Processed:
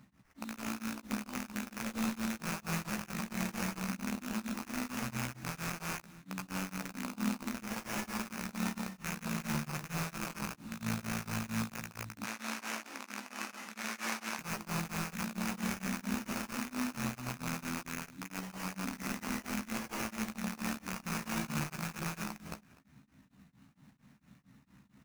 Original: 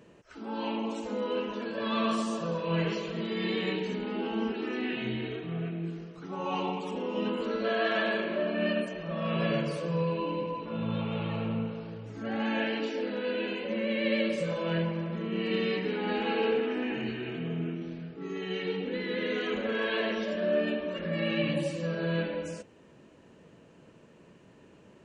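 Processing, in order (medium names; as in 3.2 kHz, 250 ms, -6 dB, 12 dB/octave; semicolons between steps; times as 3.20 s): rattle on loud lows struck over -39 dBFS, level -22 dBFS; elliptic band-stop 250–2000 Hz; sample-rate reducer 3.9 kHz, jitter 20%; 12.24–14.39 s: frequency weighting A; feedback delay 248 ms, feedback 32%, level -22 dB; dynamic bell 1.7 kHz, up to -5 dB, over -49 dBFS, Q 0.86; doubling 15 ms -6.5 dB; tremolo of two beating tones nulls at 4.4 Hz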